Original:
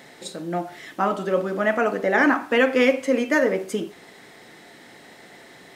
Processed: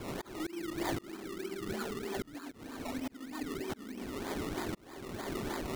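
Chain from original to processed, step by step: elliptic band-stop 390–1300 Hz; tone controls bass -3 dB, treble -8 dB; flipped gate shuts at -23 dBFS, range -24 dB; HPF 130 Hz 6 dB/oct; fixed phaser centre 350 Hz, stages 4; reverb RT60 1.4 s, pre-delay 3 ms, DRR -6 dB; in parallel at -3 dB: limiter -30 dBFS, peak gain reduction 10 dB; on the sum: decimation with a swept rate 22×, swing 60% 3.2 Hz; auto swell 0.667 s; gain +3.5 dB

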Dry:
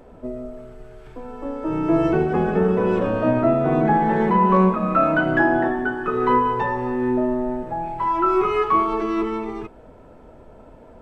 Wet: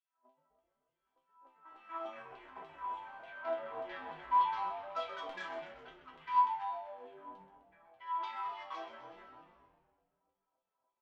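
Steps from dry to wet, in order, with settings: added harmonics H 4 -19 dB, 5 -20 dB, 7 -15 dB, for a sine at -5 dBFS; small resonant body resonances 210/970/3300 Hz, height 11 dB, ringing for 45 ms; LFO high-pass saw down 3.4 Hz 600–3200 Hz; resonator bank C4 major, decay 0.31 s; on a send: frequency-shifting echo 0.128 s, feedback 64%, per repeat -100 Hz, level -11.5 dB; on the sum: gain -8.5 dB

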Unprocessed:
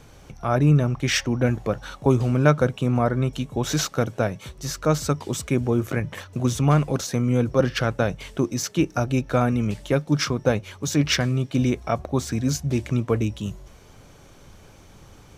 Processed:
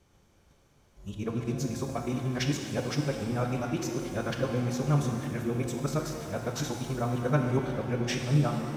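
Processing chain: whole clip reversed; time stretch by phase-locked vocoder 0.57×; gate -47 dBFS, range -6 dB; shimmer reverb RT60 2.1 s, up +7 st, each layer -8 dB, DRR 3 dB; gain -9 dB

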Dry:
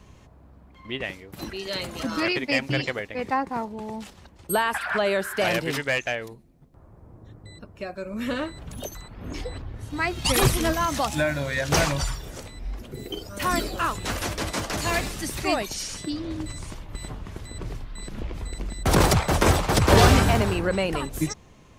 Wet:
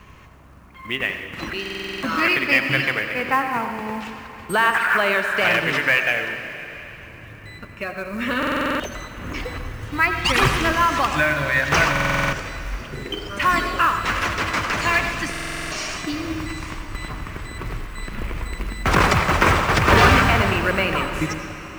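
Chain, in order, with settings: LPF 6400 Hz 12 dB/oct; band shelf 1700 Hz +9 dB; in parallel at -2.5 dB: compressor, threshold -27 dBFS, peak gain reduction 17.5 dB; on the sum: companded quantiser 6-bit; on a send at -6 dB: reverb RT60 3.9 s, pre-delay 77 ms; on the sum: stuck buffer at 1.61/8.38/11.91/15.3, samples 2048, times 8; gain -2 dB

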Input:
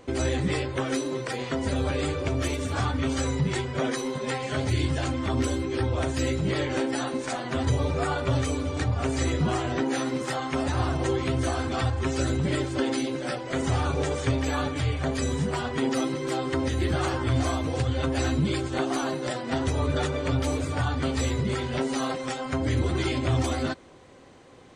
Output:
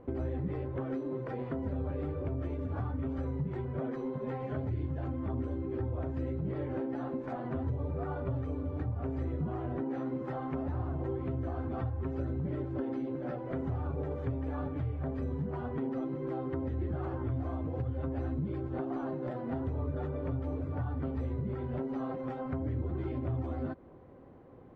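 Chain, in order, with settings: LPF 1200 Hz 12 dB/oct; low shelf 490 Hz +7 dB; compressor 3:1, threshold -27 dBFS, peak gain reduction 10.5 dB; gain -6.5 dB

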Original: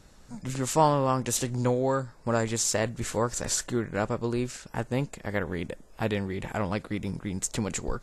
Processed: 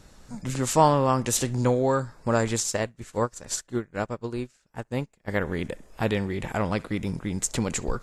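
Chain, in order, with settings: narrowing echo 66 ms, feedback 45%, band-pass 1800 Hz, level -21 dB; 2.6–5.28 upward expander 2.5:1, over -40 dBFS; gain +3 dB

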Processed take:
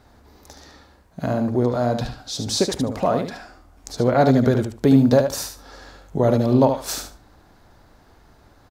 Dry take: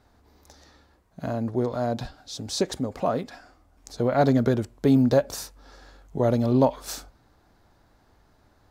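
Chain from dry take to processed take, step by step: in parallel at -1 dB: compressor, threshold -30 dBFS, peak gain reduction 14.5 dB; on the sum: feedback echo 74 ms, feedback 18%, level -7 dB; gain +2 dB

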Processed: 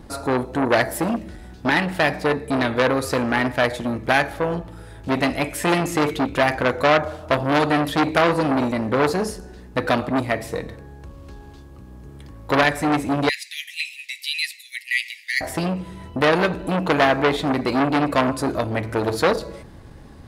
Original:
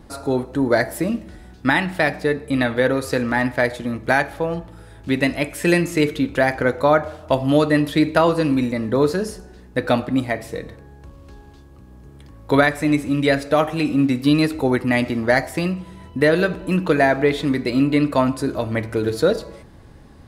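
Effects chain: 13.29–15.41 steep high-pass 1900 Hz 96 dB/oct; core saturation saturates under 1800 Hz; gain +3 dB

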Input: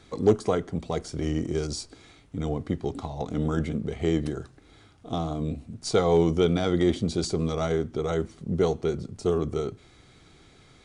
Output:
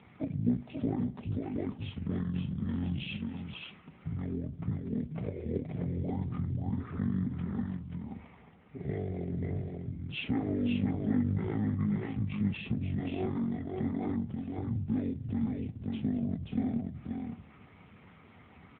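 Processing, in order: speed mistake 78 rpm record played at 45 rpm; air absorption 190 m; compressor 2.5:1, threshold -34 dBFS, peak gain reduction 13.5 dB; on a send: echo 0.533 s -4 dB; on the sum: gain +1.5 dB; AMR-NB 7.95 kbps 8000 Hz

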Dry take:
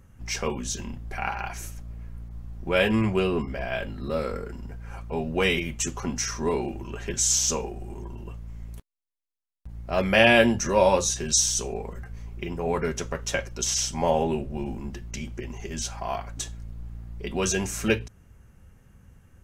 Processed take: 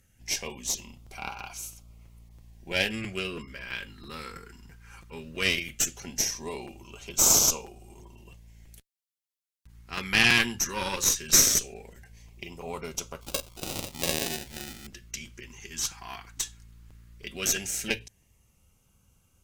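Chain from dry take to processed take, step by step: 13.21–14.87 sample-rate reducer 1100 Hz, jitter 0%; tilt shelf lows -8 dB, about 1300 Hz; added harmonics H 6 -15 dB, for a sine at 1 dBFS; LFO notch sine 0.17 Hz 590–1800 Hz; crackling interface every 0.33 s, samples 256, repeat, from 0.73; gain -5 dB

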